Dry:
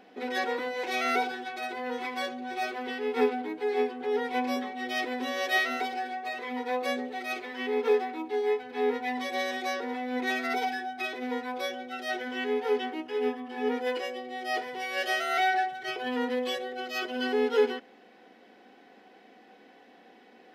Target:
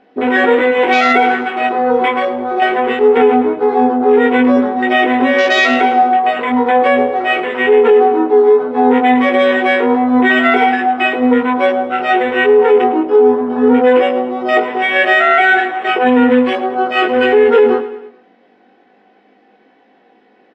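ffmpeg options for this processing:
ffmpeg -i in.wav -filter_complex "[0:a]lowpass=6500,asplit=2[link_01][link_02];[link_02]adynamicsmooth=sensitivity=3.5:basefreq=3600,volume=2.5dB[link_03];[link_01][link_03]amix=inputs=2:normalize=0,afwtdn=0.0316,flanger=delay=19:depth=2.7:speed=0.2,asettb=1/sr,asplit=3[link_04][link_05][link_06];[link_04]atrim=end=2.124[link_07];[link_05]atrim=start=2.12:end=2.62,asetpts=PTS-STARTPTS,afade=type=in:duration=0.004:curve=qsin,afade=type=out:start_time=0.496:duration=0.004:curve=qsin,acompressor=threshold=-30dB:ratio=3[link_08];[link_06]atrim=start=2.616[link_09];[link_07][link_08]acrossfade=duration=0.004:curve1=hsin:curve2=qsin[link_10];[link_10][link_09]acrossfade=duration=0.004:curve1=qsin:curve2=hsin,asettb=1/sr,asplit=3[link_11][link_12][link_13];[link_11]atrim=end=14.094[link_14];[link_12]atrim=start=14.09:end=14.68,asetpts=PTS-STARTPTS,afade=type=in:duration=0.004:curve=qsin,afade=type=out:start_time=0.586:duration=0.004:curve=qsin,asuperstop=centerf=1700:order=4:qfactor=4.7[link_15];[link_13]atrim=start=14.676[link_16];[link_14][link_15]acrossfade=duration=0.004:curve1=hsin:curve2=qsin[link_17];[link_17][link_16]acrossfade=duration=0.004:curve1=qsin:curve2=hsin,asplit=2[link_18][link_19];[link_19]aecho=0:1:107|214|321|428:0.158|0.0792|0.0396|0.0198[link_20];[link_18][link_20]amix=inputs=2:normalize=0,alimiter=level_in=18dB:limit=-1dB:release=50:level=0:latency=1,volume=-1dB" out.wav

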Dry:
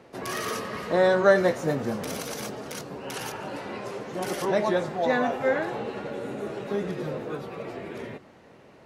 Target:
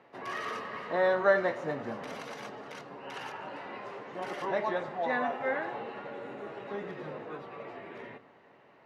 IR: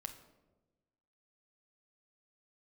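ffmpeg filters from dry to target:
-filter_complex "[0:a]lowpass=2100,aemphasis=mode=production:type=riaa,asplit=2[link_01][link_02];[1:a]atrim=start_sample=2205,lowpass=4800[link_03];[link_02][link_03]afir=irnorm=-1:irlink=0,volume=-0.5dB[link_04];[link_01][link_04]amix=inputs=2:normalize=0,volume=-7.5dB"

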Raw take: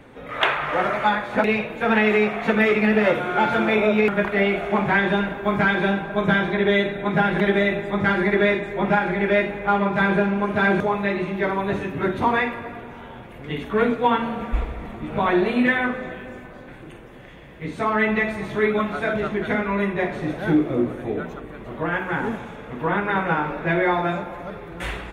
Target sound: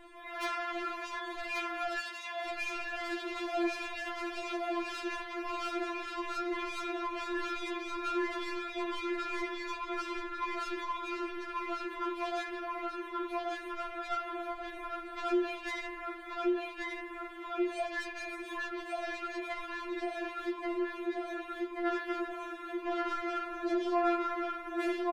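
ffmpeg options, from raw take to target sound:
ffmpeg -i in.wav -filter_complex "[0:a]aecho=1:1:1133|2266|3399|4532|5665|6798|7931:0.631|0.322|0.164|0.0837|0.0427|0.0218|0.0111,asoftclip=type=tanh:threshold=-21dB,acompressor=threshold=-28dB:ratio=6,asettb=1/sr,asplit=3[link_01][link_02][link_03];[link_01]atrim=end=1.984[link_04];[link_02]atrim=start=1.98:end=2.47,asetpts=PTS-STARTPTS,afade=type=in:duration=0.004:curve=qsin,afade=type=out:start_time=0.486:duration=0.004:curve=qsin,highpass=frequency=990:poles=1[link_05];[link_03]atrim=start=2.466[link_06];[link_04][link_05]acrossfade=duration=0.004:curve1=hsin:curve2=qsin[link_07];[link_07][link_06]acrossfade=duration=0.004:curve1=qsin:curve2=hsin,afftfilt=real='re*4*eq(mod(b,16),0)':imag='im*4*eq(mod(b,16),0)':win_size=2048:overlap=0.75,volume=-2.5dB" out.wav

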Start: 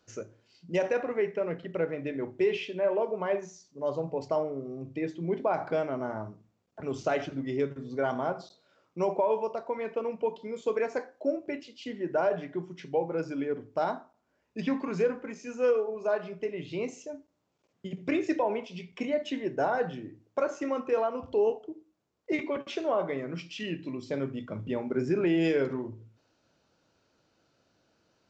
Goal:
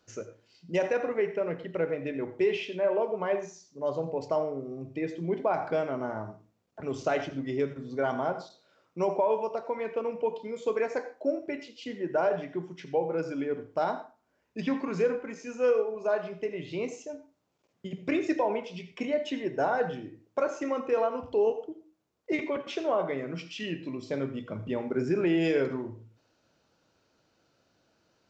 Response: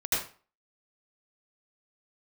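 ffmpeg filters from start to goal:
-filter_complex "[0:a]asplit=2[link_01][link_02];[link_02]highpass=300[link_03];[1:a]atrim=start_sample=2205,atrim=end_sample=6615[link_04];[link_03][link_04]afir=irnorm=-1:irlink=0,volume=-20.5dB[link_05];[link_01][link_05]amix=inputs=2:normalize=0"

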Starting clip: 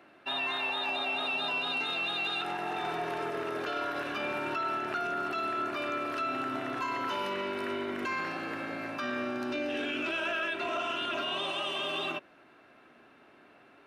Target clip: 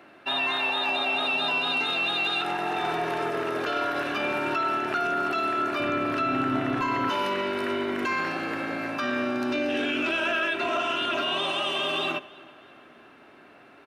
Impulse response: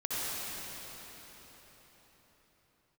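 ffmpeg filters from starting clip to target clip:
-filter_complex "[0:a]asettb=1/sr,asplit=3[link_01][link_02][link_03];[link_01]atrim=end=5.804[link_04];[link_02]atrim=start=5.8:end=7.1,asetpts=PTS-STARTPTS,afade=type=in:duration=0.004:curve=qsin,afade=type=out:start_time=1.296:duration=0.004:curve=qsin,bass=frequency=250:gain=10,treble=frequency=4000:gain=-5[link_05];[link_03]atrim=start=7.096[link_06];[link_04][link_05]acrossfade=duration=0.004:curve1=hsin:curve2=qsin[link_07];[link_07][link_06]acrossfade=duration=0.004:curve1=qsin:curve2=hsin,asplit=2[link_08][link_09];[link_09]adelay=324,lowpass=frequency=4200:poles=1,volume=-21.5dB,asplit=2[link_10][link_11];[link_11]adelay=324,lowpass=frequency=4200:poles=1,volume=0.55,asplit=2[link_12][link_13];[link_13]adelay=324,lowpass=frequency=4200:poles=1,volume=0.55,asplit=2[link_14][link_15];[link_15]adelay=324,lowpass=frequency=4200:poles=1,volume=0.55[link_16];[link_08][link_10][link_12][link_14][link_16]amix=inputs=5:normalize=0,asplit=2[link_17][link_18];[1:a]atrim=start_sample=2205,atrim=end_sample=3969[link_19];[link_18][link_19]afir=irnorm=-1:irlink=0,volume=-15.5dB[link_20];[link_17][link_20]amix=inputs=2:normalize=0,volume=5dB"

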